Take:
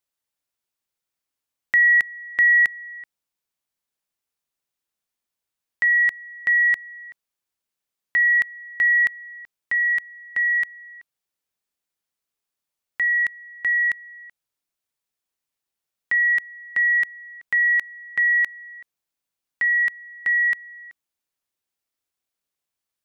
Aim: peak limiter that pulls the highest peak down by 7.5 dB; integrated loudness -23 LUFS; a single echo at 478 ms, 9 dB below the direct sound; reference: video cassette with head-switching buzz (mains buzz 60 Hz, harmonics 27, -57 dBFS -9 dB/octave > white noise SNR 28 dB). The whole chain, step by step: peak limiter -19.5 dBFS; delay 478 ms -9 dB; mains buzz 60 Hz, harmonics 27, -57 dBFS -9 dB/octave; white noise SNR 28 dB; trim +1.5 dB

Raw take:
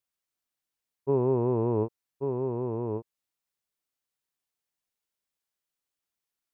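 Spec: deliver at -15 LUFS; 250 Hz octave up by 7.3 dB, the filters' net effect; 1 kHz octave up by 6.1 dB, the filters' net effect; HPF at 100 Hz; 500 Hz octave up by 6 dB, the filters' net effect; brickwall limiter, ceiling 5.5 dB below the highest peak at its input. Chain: high-pass 100 Hz; peaking EQ 250 Hz +8 dB; peaking EQ 500 Hz +3.5 dB; peaking EQ 1 kHz +5.5 dB; trim +11 dB; peak limiter -4 dBFS

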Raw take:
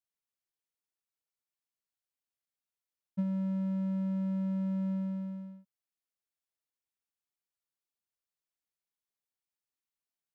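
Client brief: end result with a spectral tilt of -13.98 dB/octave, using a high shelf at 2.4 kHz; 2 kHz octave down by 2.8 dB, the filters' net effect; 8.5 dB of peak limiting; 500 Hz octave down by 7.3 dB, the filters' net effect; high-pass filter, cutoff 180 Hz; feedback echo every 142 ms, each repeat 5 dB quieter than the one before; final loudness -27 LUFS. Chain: high-pass 180 Hz; peaking EQ 500 Hz -8.5 dB; peaking EQ 2 kHz -5.5 dB; treble shelf 2.4 kHz +6 dB; peak limiter -37 dBFS; feedback delay 142 ms, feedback 56%, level -5 dB; trim +11.5 dB

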